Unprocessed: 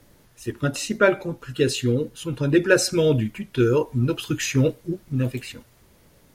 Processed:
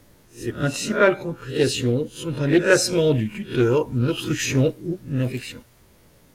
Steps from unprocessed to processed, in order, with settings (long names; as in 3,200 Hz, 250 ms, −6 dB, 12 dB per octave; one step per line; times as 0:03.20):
peak hold with a rise ahead of every peak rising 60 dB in 0.32 s
highs frequency-modulated by the lows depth 0.16 ms